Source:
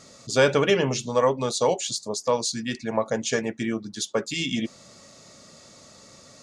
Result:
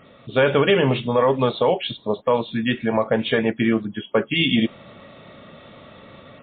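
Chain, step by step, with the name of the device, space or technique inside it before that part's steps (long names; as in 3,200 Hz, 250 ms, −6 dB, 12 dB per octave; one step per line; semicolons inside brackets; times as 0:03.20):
low-bitrate web radio (automatic gain control gain up to 5.5 dB; brickwall limiter −11 dBFS, peak gain reduction 6.5 dB; level +3.5 dB; MP3 24 kbit/s 8,000 Hz)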